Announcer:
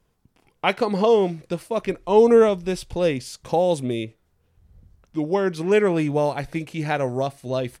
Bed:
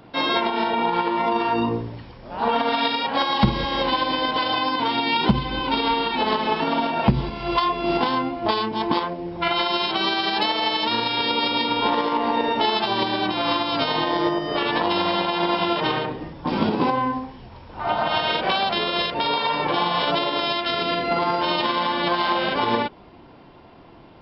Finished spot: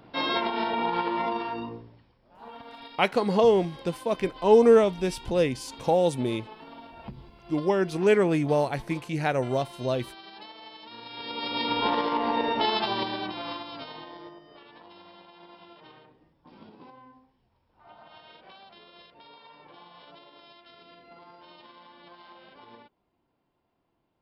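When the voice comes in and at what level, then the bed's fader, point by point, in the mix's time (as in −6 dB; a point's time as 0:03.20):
2.35 s, −2.5 dB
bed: 0:01.20 −5.5 dB
0:02.19 −23.5 dB
0:10.89 −23.5 dB
0:11.69 −4.5 dB
0:12.83 −4.5 dB
0:14.67 −29 dB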